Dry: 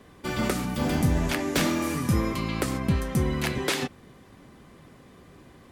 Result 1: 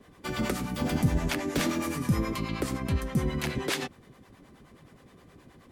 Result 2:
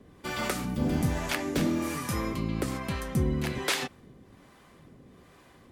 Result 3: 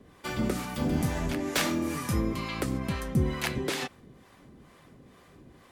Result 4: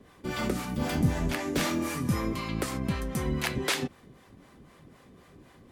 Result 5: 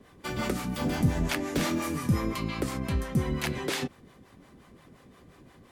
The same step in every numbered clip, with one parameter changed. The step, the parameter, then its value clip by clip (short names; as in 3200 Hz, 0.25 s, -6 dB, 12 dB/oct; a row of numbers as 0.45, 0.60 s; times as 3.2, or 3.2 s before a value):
harmonic tremolo, rate: 9.5, 1.2, 2.2, 3.9, 5.7 Hz